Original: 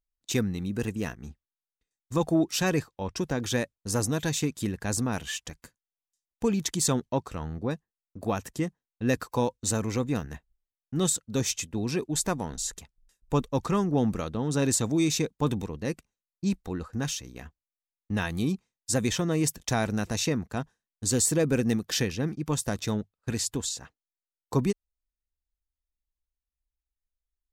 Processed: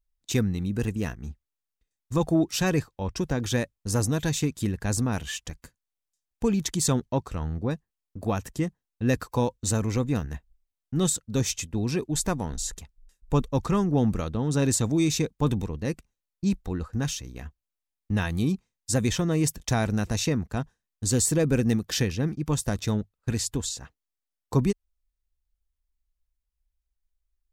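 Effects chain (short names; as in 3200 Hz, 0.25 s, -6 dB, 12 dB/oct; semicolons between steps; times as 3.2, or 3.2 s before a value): low shelf 100 Hz +11.5 dB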